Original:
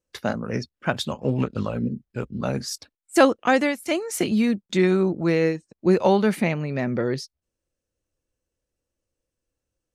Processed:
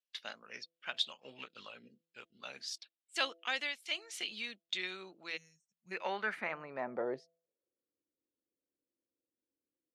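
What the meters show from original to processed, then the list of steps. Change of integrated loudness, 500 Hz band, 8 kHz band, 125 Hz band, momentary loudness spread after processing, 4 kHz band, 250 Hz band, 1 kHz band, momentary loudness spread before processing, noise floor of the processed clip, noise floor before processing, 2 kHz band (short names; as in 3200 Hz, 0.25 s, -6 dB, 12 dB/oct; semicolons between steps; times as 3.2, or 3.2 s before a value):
-16.0 dB, -21.5 dB, -15.0 dB, -35.5 dB, 14 LU, -4.0 dB, -29.5 dB, -16.5 dB, 11 LU, under -85 dBFS, -85 dBFS, -10.0 dB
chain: de-hum 166.9 Hz, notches 4; spectral gain 5.37–5.92, 220–5400 Hz -28 dB; low shelf 120 Hz -11 dB; band-pass sweep 3300 Hz -> 300 Hz, 5.58–7.96; gain -1.5 dB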